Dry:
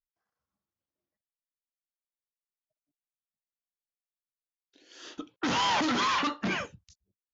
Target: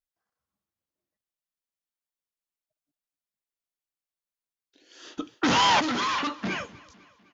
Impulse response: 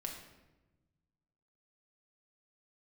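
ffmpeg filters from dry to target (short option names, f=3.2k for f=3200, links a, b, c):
-filter_complex "[0:a]aecho=1:1:252|504|756|1008:0.0794|0.0445|0.0249|0.0139,asettb=1/sr,asplit=3[a][b][c];[a]atrim=end=5.174[d];[b]atrim=start=5.17:end=5.8,asetpts=PTS-STARTPTS,afade=t=in:d=0.004:c=qsin,afade=t=out:st=0.626:d=0.004:c=qsin,acontrast=59[e];[c]atrim=start=5.796[f];[d][e]acrossfade=d=0.004:c1=hsin:c2=qsin[g];[g][f]acrossfade=d=0.004:c1=qsin:c2=hsin"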